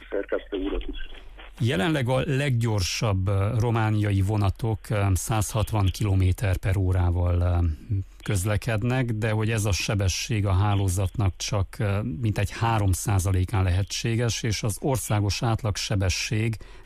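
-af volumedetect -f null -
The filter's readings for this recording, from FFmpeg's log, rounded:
mean_volume: -24.3 dB
max_volume: -13.6 dB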